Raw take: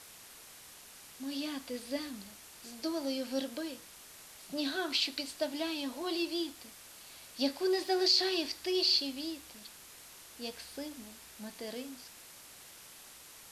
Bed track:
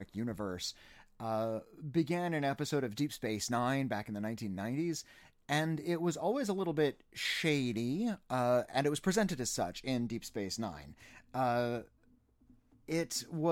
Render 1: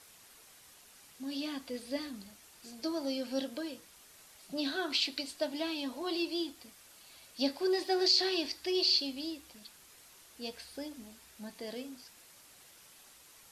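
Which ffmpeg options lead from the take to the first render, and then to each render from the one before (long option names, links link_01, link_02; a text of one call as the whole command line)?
ffmpeg -i in.wav -af "afftdn=noise_reduction=6:noise_floor=-53" out.wav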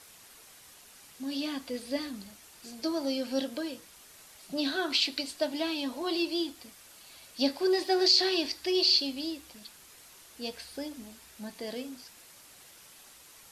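ffmpeg -i in.wav -af "volume=4dB" out.wav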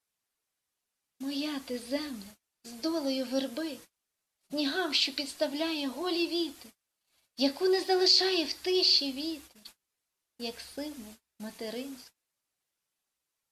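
ffmpeg -i in.wav -af "agate=range=-32dB:threshold=-48dB:ratio=16:detection=peak" out.wav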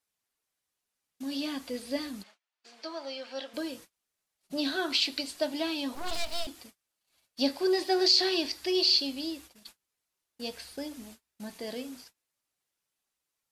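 ffmpeg -i in.wav -filter_complex "[0:a]asplit=3[link_01][link_02][link_03];[link_01]afade=type=out:start_time=2.22:duration=0.02[link_04];[link_02]highpass=690,lowpass=3800,afade=type=in:start_time=2.22:duration=0.02,afade=type=out:start_time=3.53:duration=0.02[link_05];[link_03]afade=type=in:start_time=3.53:duration=0.02[link_06];[link_04][link_05][link_06]amix=inputs=3:normalize=0,asettb=1/sr,asplit=3[link_07][link_08][link_09];[link_07]atrim=end=5.954[link_10];[link_08]atrim=start=5.95:end=6.47,asetpts=PTS-STARTPTS,afade=type=in:duration=0.004:curve=qsin,afade=type=out:start_time=0.516:duration=0.004:curve=qsin,aeval=exprs='abs(val(0))':channel_layout=same[link_11];[link_09]atrim=start=6.466[link_12];[link_10][link_11]acrossfade=duration=0.004:curve1=hsin:curve2=qsin[link_13];[link_13][link_12]acrossfade=duration=0.004:curve1=qsin:curve2=hsin" out.wav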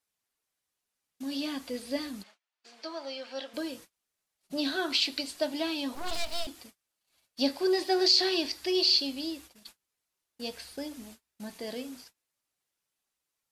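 ffmpeg -i in.wav -af anull out.wav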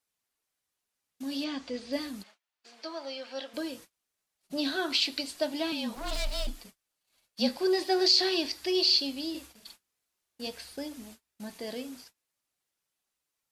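ffmpeg -i in.wav -filter_complex "[0:a]asettb=1/sr,asplit=3[link_01][link_02][link_03];[link_01]atrim=end=1.444[link_04];[link_02]atrim=start=1.44:end=1.93,asetpts=PTS-STARTPTS,afade=type=in:duration=0.004:curve=qsin,afade=type=out:start_time=0.486:duration=0.004:curve=qsin,lowpass=frequency=6600:width=0.5412,lowpass=frequency=6600:width=1.3066[link_05];[link_03]atrim=start=1.926[link_06];[link_04][link_05]acrossfade=duration=0.004:curve1=hsin:curve2=qsin[link_07];[link_07][link_06]acrossfade=duration=0.004:curve1=qsin:curve2=hsin,asettb=1/sr,asplit=3[link_08][link_09][link_10];[link_08]atrim=end=5.724[link_11];[link_09]atrim=start=5.72:end=7.57,asetpts=PTS-STARTPTS,afade=type=in:duration=0.004:curve=qsin,afade=type=out:start_time=1.846:duration=0.004:curve=qsin,afreqshift=-29[link_12];[link_10]atrim=start=7.566[link_13];[link_11][link_12]acrossfade=duration=0.004:curve1=hsin:curve2=qsin[link_14];[link_14][link_13]acrossfade=duration=0.004:curve1=qsin:curve2=hsin,asettb=1/sr,asplit=3[link_15][link_16][link_17];[link_15]atrim=end=9.304[link_18];[link_16]atrim=start=9.3:end=10.47,asetpts=PTS-STARTPTS,afade=type=in:duration=0.004:curve=qsin,afade=type=out:start_time=1.166:duration=0.004:curve=qsin,asplit=2[link_19][link_20];[link_20]adelay=45,volume=-3.5dB[link_21];[link_19][link_21]amix=inputs=2:normalize=0,atrim=end_sample=51597[link_22];[link_17]atrim=start=10.466[link_23];[link_18][link_22]acrossfade=duration=0.004:curve1=hsin:curve2=qsin[link_24];[link_24][link_23]acrossfade=duration=0.004:curve1=qsin:curve2=hsin" out.wav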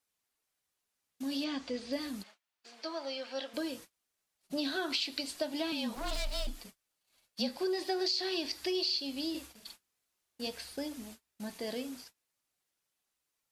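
ffmpeg -i in.wav -af "acompressor=threshold=-31dB:ratio=4" out.wav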